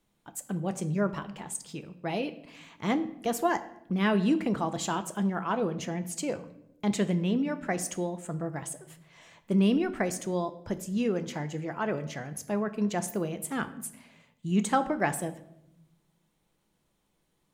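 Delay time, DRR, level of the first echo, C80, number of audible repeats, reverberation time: no echo, 9.0 dB, no echo, 17.0 dB, no echo, 0.85 s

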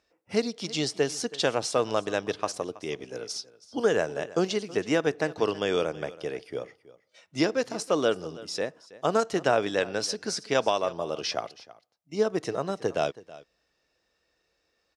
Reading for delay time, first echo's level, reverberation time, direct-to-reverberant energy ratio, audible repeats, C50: 324 ms, -19.0 dB, no reverb, no reverb, 1, no reverb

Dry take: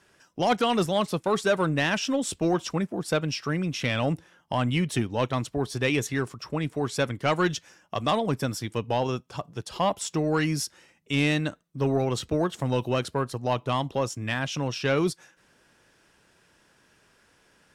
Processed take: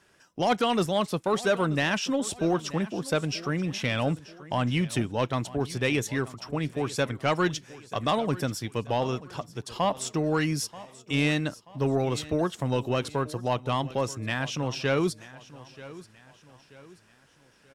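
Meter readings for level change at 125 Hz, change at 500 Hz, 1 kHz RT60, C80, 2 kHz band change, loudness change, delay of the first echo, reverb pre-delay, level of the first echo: -1.0 dB, -1.0 dB, no reverb, no reverb, -1.0 dB, -1.0 dB, 933 ms, no reverb, -18.0 dB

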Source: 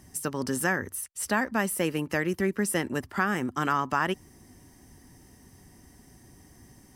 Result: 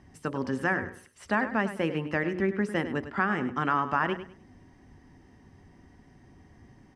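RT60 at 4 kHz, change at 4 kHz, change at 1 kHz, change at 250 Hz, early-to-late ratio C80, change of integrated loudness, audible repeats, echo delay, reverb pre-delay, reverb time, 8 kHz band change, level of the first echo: no reverb, -4.5 dB, 0.0 dB, -0.5 dB, no reverb, -0.5 dB, 2, 101 ms, no reverb, no reverb, under -20 dB, -12.0 dB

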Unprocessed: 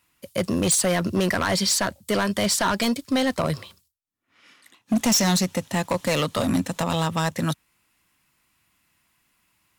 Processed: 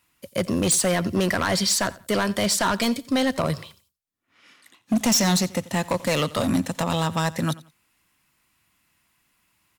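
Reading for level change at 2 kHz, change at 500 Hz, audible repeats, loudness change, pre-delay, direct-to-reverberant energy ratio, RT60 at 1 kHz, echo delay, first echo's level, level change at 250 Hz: 0.0 dB, 0.0 dB, 2, 0.0 dB, no reverb, no reverb, no reverb, 88 ms, -20.0 dB, 0.0 dB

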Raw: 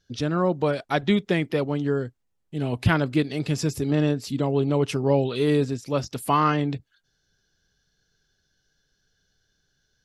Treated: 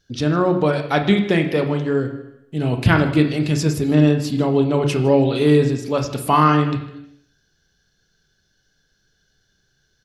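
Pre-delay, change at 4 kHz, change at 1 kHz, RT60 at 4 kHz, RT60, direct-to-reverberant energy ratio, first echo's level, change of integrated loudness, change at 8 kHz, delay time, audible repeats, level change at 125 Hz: 24 ms, +5.0 dB, +6.0 dB, 0.85 s, 0.80 s, 4.5 dB, -20.0 dB, +6.0 dB, +4.5 dB, 155 ms, 1, +6.5 dB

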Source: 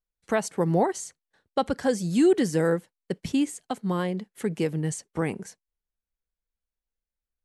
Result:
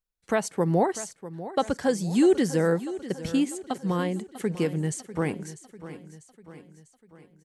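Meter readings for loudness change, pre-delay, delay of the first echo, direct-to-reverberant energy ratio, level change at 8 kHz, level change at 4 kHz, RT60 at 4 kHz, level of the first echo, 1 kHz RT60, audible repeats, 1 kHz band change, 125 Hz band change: 0.0 dB, no reverb, 646 ms, no reverb, 0.0 dB, 0.0 dB, no reverb, -14.5 dB, no reverb, 4, 0.0 dB, +0.5 dB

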